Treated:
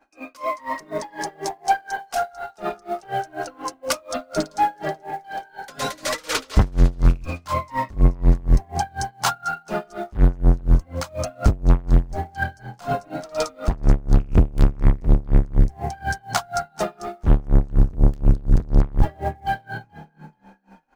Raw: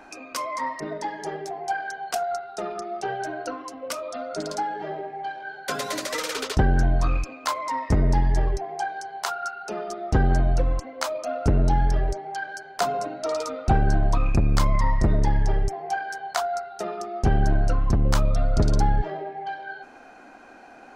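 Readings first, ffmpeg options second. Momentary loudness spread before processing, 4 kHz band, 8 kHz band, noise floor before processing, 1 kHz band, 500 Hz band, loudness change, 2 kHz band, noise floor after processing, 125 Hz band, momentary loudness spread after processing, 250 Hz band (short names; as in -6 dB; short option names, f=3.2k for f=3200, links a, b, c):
11 LU, +2.0 dB, +2.5 dB, -47 dBFS, +1.5 dB, +0.5 dB, +2.5 dB, +1.5 dB, -55 dBFS, +3.0 dB, 11 LU, +3.0 dB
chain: -filter_complex "[0:a]bandreject=f=71:t=h:w=4,bandreject=f=142:t=h:w=4,bandreject=f=213:t=h:w=4,bandreject=f=284:t=h:w=4,bandreject=f=355:t=h:w=4,bandreject=f=426:t=h:w=4,bandreject=f=497:t=h:w=4,agate=range=-33dB:threshold=-36dB:ratio=3:detection=peak,aecho=1:1:3.6:0.3,asubboost=boost=3.5:cutoff=150,asplit=2[a][b];[b]acrusher=bits=4:mode=log:mix=0:aa=0.000001,volume=-6.5dB[c];[a][c]amix=inputs=2:normalize=0,asoftclip=type=tanh:threshold=-16dB,asplit=2[d][e];[e]asplit=4[f][g][h][i];[f]adelay=431,afreqshift=40,volume=-17.5dB[j];[g]adelay=862,afreqshift=80,volume=-24.4dB[k];[h]adelay=1293,afreqshift=120,volume=-31.4dB[l];[i]adelay=1724,afreqshift=160,volume=-38.3dB[m];[j][k][l][m]amix=inputs=4:normalize=0[n];[d][n]amix=inputs=2:normalize=0,aeval=exprs='val(0)*pow(10,-28*(0.5-0.5*cos(2*PI*4.1*n/s))/20)':c=same,volume=7.5dB"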